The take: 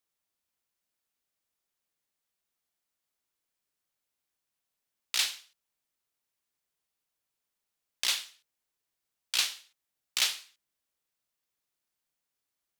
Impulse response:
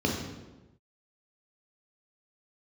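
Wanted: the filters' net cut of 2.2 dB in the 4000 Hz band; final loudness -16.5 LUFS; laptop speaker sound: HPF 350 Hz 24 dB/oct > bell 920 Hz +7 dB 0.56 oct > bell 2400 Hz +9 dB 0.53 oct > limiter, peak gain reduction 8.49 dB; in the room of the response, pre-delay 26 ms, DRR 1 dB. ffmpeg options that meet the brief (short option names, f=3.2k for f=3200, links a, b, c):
-filter_complex "[0:a]equalizer=f=4k:t=o:g=-5.5,asplit=2[a][b];[1:a]atrim=start_sample=2205,adelay=26[c];[b][c]afir=irnorm=-1:irlink=0,volume=-12dB[d];[a][d]amix=inputs=2:normalize=0,highpass=f=350:w=0.5412,highpass=f=350:w=1.3066,equalizer=f=920:t=o:w=0.56:g=7,equalizer=f=2.4k:t=o:w=0.53:g=9,volume=17dB,alimiter=limit=-3dB:level=0:latency=1"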